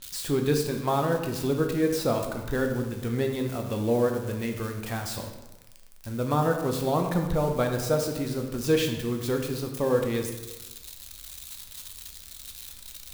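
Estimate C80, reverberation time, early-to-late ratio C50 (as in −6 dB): 8.0 dB, 1.1 s, 6.0 dB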